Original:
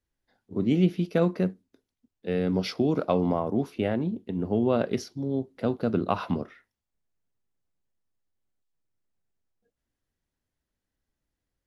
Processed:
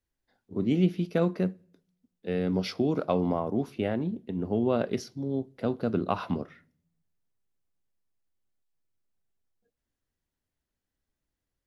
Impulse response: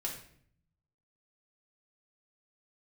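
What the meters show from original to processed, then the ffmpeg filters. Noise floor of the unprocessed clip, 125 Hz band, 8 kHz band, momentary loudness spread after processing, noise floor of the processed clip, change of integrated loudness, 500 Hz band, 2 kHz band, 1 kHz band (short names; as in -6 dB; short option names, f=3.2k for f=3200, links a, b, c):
under -85 dBFS, -2.0 dB, n/a, 7 LU, under -85 dBFS, -2.0 dB, -2.0 dB, -2.0 dB, -2.0 dB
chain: -filter_complex "[0:a]asplit=2[a][b];[1:a]atrim=start_sample=2205[c];[b][c]afir=irnorm=-1:irlink=0,volume=-22.5dB[d];[a][d]amix=inputs=2:normalize=0,volume=-2.5dB"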